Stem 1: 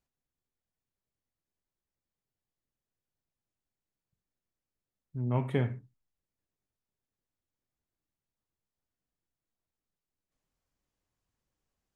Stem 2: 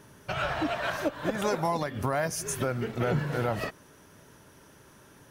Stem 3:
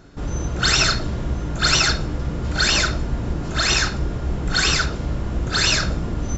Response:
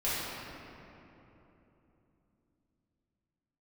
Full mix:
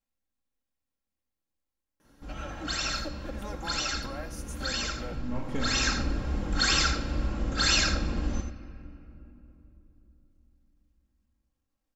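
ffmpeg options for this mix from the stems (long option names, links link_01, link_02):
-filter_complex "[0:a]aeval=exprs='if(lt(val(0),0),0.447*val(0),val(0))':channel_layout=same,volume=-4dB,asplit=3[link_01][link_02][link_03];[link_02]volume=-9dB[link_04];[1:a]adelay=2000,volume=-13.5dB,asplit=2[link_05][link_06];[link_06]volume=-13.5dB[link_07];[2:a]adelay=2050,volume=-8dB,afade=type=in:start_time=5.45:duration=0.59:silence=0.375837,asplit=3[link_08][link_09][link_10];[link_09]volume=-20dB[link_11];[link_10]volume=-7.5dB[link_12];[link_03]apad=whole_len=322024[link_13];[link_05][link_13]sidechaincompress=threshold=-49dB:ratio=8:attack=16:release=284[link_14];[3:a]atrim=start_sample=2205[link_15];[link_04][link_11]amix=inputs=2:normalize=0[link_16];[link_16][link_15]afir=irnorm=-1:irlink=0[link_17];[link_07][link_12]amix=inputs=2:normalize=0,aecho=0:1:84:1[link_18];[link_01][link_14][link_08][link_17][link_18]amix=inputs=5:normalize=0,aecho=1:1:3.7:0.54"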